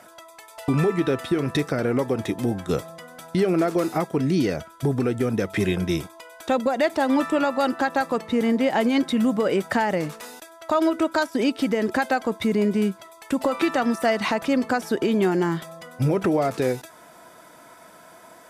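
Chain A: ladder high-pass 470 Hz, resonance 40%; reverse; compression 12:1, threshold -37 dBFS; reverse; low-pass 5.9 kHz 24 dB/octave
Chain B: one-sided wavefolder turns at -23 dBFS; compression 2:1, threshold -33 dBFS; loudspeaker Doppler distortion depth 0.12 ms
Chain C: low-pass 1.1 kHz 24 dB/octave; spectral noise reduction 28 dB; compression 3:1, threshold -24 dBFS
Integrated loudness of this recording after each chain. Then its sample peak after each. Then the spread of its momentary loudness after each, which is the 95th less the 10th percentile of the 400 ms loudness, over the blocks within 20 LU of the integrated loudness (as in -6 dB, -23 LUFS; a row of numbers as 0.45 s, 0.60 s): -42.5 LUFS, -33.5 LUFS, -28.5 LUFS; -27.0 dBFS, -16.5 dBFS, -14.0 dBFS; 10 LU, 10 LU, 6 LU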